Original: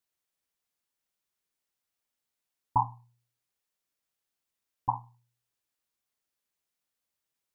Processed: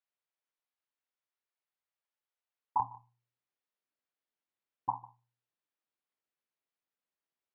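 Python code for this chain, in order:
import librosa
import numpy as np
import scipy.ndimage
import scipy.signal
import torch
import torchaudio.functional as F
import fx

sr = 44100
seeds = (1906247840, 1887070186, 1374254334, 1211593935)

y = fx.highpass(x, sr, hz=fx.steps((0.0, 500.0), (2.8, 190.0)), slope=12)
y = fx.air_absorb(y, sr, metres=260.0)
y = y + 10.0 ** (-21.0 / 20.0) * np.pad(y, (int(150 * sr / 1000.0), 0))[:len(y)]
y = y * librosa.db_to_amplitude(-3.0)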